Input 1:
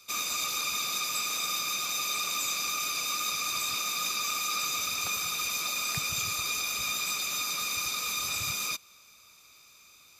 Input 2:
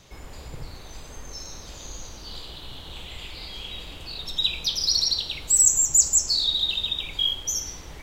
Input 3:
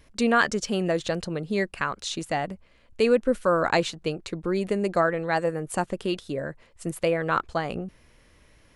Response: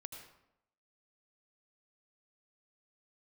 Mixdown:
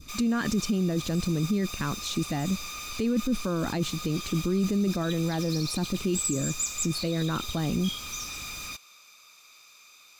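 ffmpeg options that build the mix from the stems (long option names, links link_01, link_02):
-filter_complex "[0:a]asplit=2[link_01][link_02];[link_02]highpass=frequency=720:poles=1,volume=18dB,asoftclip=type=tanh:threshold=-23.5dB[link_03];[link_01][link_03]amix=inputs=2:normalize=0,lowpass=frequency=6400:poles=1,volume=-6dB,acrusher=bits=6:mode=log:mix=0:aa=0.000001,volume=-8.5dB[link_04];[1:a]adelay=650,volume=-11.5dB[link_05];[2:a]lowshelf=frequency=380:width_type=q:width=1.5:gain=10.5,volume=-1.5dB[link_06];[link_04][link_05][link_06]amix=inputs=3:normalize=0,adynamicequalizer=threshold=0.0112:dfrequency=1900:dqfactor=0.96:tfrequency=1900:tqfactor=0.96:attack=5:release=100:ratio=0.375:range=2.5:mode=cutabove:tftype=bell,alimiter=limit=-19dB:level=0:latency=1:release=13"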